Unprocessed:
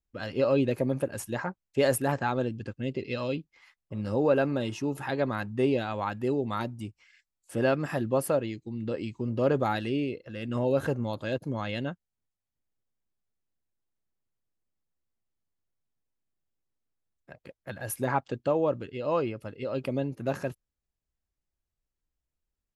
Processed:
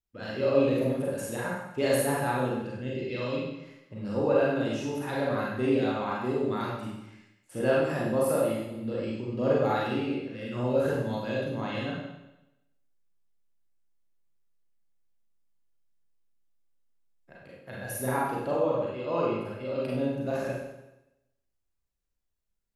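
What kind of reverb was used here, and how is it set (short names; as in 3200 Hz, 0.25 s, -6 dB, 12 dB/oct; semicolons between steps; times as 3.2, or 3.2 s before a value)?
Schroeder reverb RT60 0.91 s, combs from 32 ms, DRR -5.5 dB; gain -6 dB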